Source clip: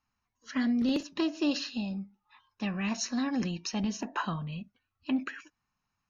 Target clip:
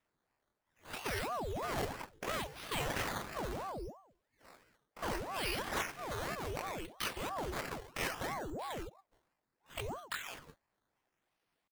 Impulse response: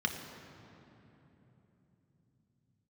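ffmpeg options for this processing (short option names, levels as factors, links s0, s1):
-filter_complex "[0:a]highshelf=f=2500:g=9.5,acrossover=split=180|480|2200[s0][s1][s2][s3];[s1]acompressor=threshold=0.00708:ratio=12[s4];[s0][s4][s2][s3]amix=inputs=4:normalize=0,alimiter=limit=0.1:level=0:latency=1:release=211,acrusher=samples=12:mix=1:aa=0.000001:lfo=1:lforange=12:lforate=1.3,asoftclip=type=tanh:threshold=0.0841,atempo=0.52,aeval=exprs='val(0)*sin(2*PI*560*n/s+560*0.75/3*sin(2*PI*3*n/s))':c=same,volume=0.891"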